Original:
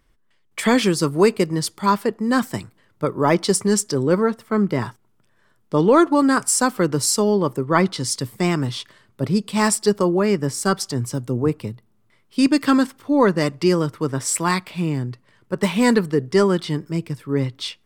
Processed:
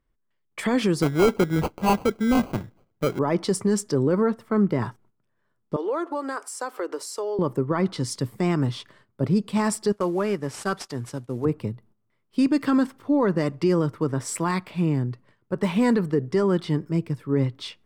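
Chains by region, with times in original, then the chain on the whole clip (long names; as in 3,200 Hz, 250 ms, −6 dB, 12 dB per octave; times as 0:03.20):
0:01.02–0:03.19: sample-rate reduction 1,800 Hz + gain into a clipping stage and back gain 13 dB
0:05.76–0:07.39: inverse Chebyshev high-pass filter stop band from 180 Hz + downward compressor 2.5 to 1, threshold −27 dBFS
0:09.92–0:11.45: variable-slope delta modulation 64 kbit/s + downward expander −32 dBFS + low-shelf EQ 480 Hz −9 dB
whole clip: noise gate −52 dBFS, range −11 dB; high-shelf EQ 2,200 Hz −10 dB; brickwall limiter −13 dBFS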